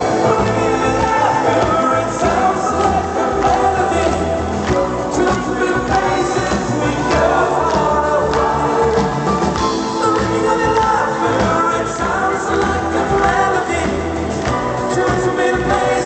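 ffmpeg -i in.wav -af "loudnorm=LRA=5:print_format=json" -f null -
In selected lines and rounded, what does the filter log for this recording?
"input_i" : "-15.8",
"input_tp" : "-1.3",
"input_lra" : "1.5",
"input_thresh" : "-25.8",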